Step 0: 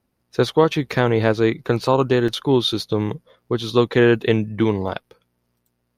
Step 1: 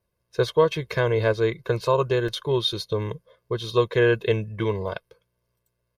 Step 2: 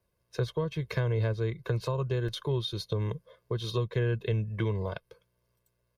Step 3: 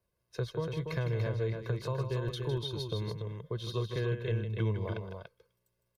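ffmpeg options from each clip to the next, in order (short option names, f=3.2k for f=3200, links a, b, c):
-af "aecho=1:1:1.9:0.88,volume=-7dB"
-filter_complex "[0:a]acrossover=split=200[a][b];[b]acompressor=threshold=-33dB:ratio=5[c];[a][c]amix=inputs=2:normalize=0"
-af "aecho=1:1:157.4|288.6:0.355|0.501,volume=-4.5dB"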